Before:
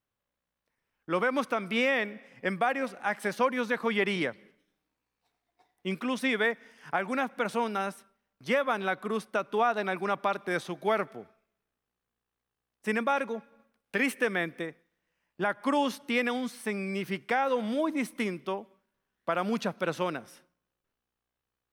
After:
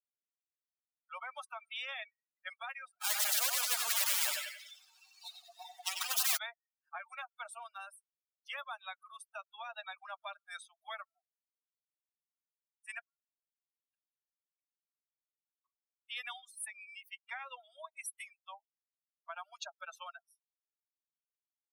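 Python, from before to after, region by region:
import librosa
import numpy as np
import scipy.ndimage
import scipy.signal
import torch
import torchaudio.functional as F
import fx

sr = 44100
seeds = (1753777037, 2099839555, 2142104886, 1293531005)

y = fx.chain(x, sr, fx.lowpass(hz=6200.0, slope=24),
    fx.power_curve(exponent=0.35),
    fx.echo_feedback(ms=93, feedback_pct=57, wet_db=-5.5), at=(3.01, 6.37))
y = fx.chain(y, sr, fx.reverse_delay(ms=666, wet_db=-13.5),
    fx.gate_flip(shuts_db=-28.0, range_db=-28),
    fx.ladder_highpass(hz=1000.0, resonance_pct=60), at=(12.99, 16.09))
y = fx.bin_expand(y, sr, power=3.0)
y = scipy.signal.sosfilt(scipy.signal.butter(16, 680.0, 'highpass', fs=sr, output='sos'), y)
y = fx.spectral_comp(y, sr, ratio=10.0)
y = F.gain(torch.from_numpy(y), 2.5).numpy()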